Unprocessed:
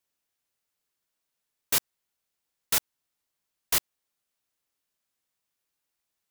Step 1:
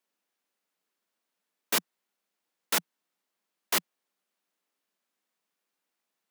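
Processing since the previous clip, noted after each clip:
Butterworth high-pass 170 Hz 72 dB per octave
high-shelf EQ 3,500 Hz −8.5 dB
level +4 dB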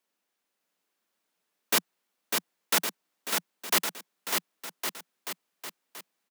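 bouncing-ball delay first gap 600 ms, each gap 0.85×, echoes 5
level +2 dB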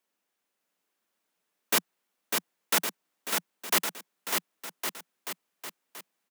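parametric band 4,400 Hz −2 dB

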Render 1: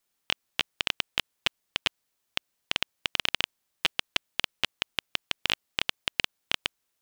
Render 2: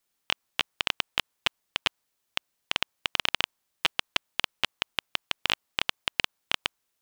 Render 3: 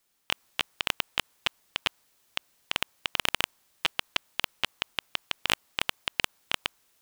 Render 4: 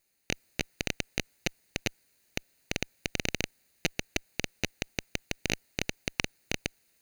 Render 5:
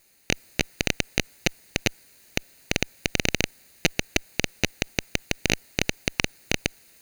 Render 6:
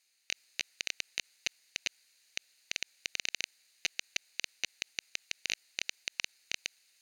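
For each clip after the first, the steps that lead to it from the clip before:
dynamic equaliser 1,000 Hz, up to +5 dB, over −50 dBFS, Q 1.2
transient designer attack −7 dB, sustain +6 dB; level +5 dB
lower of the sound and its delayed copy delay 0.46 ms
boost into a limiter +15 dB; level −1 dB
resonant band-pass 4,200 Hz, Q 0.87; level −7 dB

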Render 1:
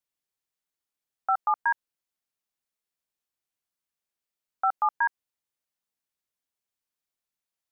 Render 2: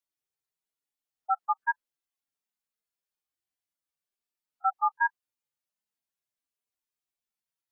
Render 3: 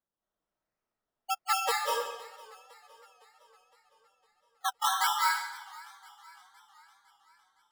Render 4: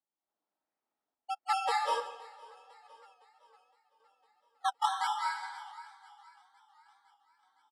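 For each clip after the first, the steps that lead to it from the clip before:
harmonic-percussive split with one part muted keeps harmonic
sample-and-hold swept by an LFO 16×, swing 60% 1.3 Hz; convolution reverb RT60 0.95 s, pre-delay 164 ms, DRR −5.5 dB; feedback echo with a swinging delay time 510 ms, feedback 55%, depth 106 cents, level −21 dB; level −5 dB
loudspeaker in its box 220–8,900 Hz, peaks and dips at 280 Hz +8 dB, 830 Hz +9 dB, 6,600 Hz −10 dB; single-tap delay 538 ms −20.5 dB; sample-and-hold tremolo, depth 55%; level −2.5 dB

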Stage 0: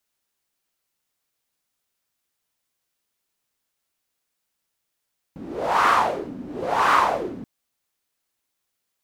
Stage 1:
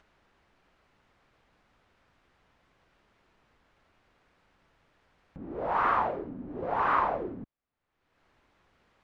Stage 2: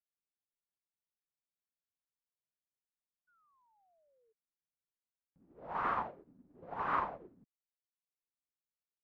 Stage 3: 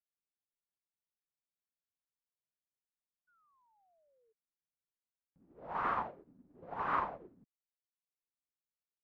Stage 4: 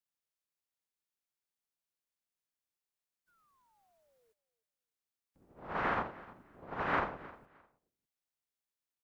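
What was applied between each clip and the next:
low-pass filter 1,800 Hz 12 dB per octave; low-shelf EQ 88 Hz +9.5 dB; upward compression, threshold −39 dBFS; level −7 dB
parametric band 170 Hz +6 dB 1.1 octaves; sound drawn into the spectrogram fall, 0:03.27–0:04.33, 430–1,500 Hz −41 dBFS; expander for the loud parts 2.5 to 1, over −49 dBFS; level −6 dB
no processing that can be heard
ceiling on every frequency bin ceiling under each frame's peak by 14 dB; repeating echo 308 ms, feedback 22%, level −20 dB; level +1.5 dB

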